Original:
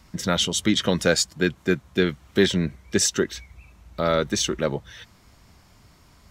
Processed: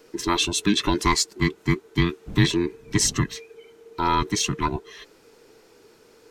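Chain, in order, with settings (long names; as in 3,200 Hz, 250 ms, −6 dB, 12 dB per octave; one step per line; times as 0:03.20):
frequency inversion band by band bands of 500 Hz
0:02.26–0:03.35: wind on the microphone 180 Hz −31 dBFS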